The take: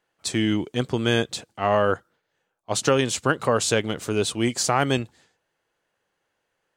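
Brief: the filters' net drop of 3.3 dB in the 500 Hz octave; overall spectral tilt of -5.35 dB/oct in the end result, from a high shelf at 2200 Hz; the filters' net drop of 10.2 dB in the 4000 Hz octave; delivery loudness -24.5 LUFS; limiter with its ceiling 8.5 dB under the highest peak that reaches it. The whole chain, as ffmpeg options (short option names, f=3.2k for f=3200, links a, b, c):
-af "equalizer=f=500:t=o:g=-3.5,highshelf=f=2.2k:g=-8.5,equalizer=f=4k:t=o:g=-5.5,volume=5.5dB,alimiter=limit=-11.5dB:level=0:latency=1"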